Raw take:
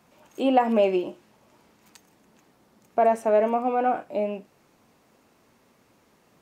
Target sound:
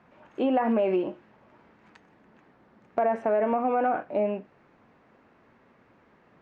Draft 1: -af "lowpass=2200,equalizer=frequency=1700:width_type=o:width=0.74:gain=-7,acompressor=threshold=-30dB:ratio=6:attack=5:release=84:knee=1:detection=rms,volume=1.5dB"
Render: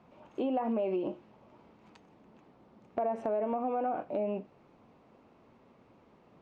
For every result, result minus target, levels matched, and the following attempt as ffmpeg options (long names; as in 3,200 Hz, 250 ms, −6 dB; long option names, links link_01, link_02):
2,000 Hz band −6.5 dB; downward compressor: peak gain reduction +6.5 dB
-af "lowpass=2200,equalizer=frequency=1700:width_type=o:width=0.74:gain=4.5,acompressor=threshold=-30dB:ratio=6:attack=5:release=84:knee=1:detection=rms,volume=1.5dB"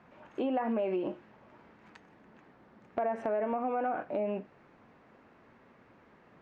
downward compressor: peak gain reduction +7 dB
-af "lowpass=2200,equalizer=frequency=1700:width_type=o:width=0.74:gain=4.5,acompressor=threshold=-21.5dB:ratio=6:attack=5:release=84:knee=1:detection=rms,volume=1.5dB"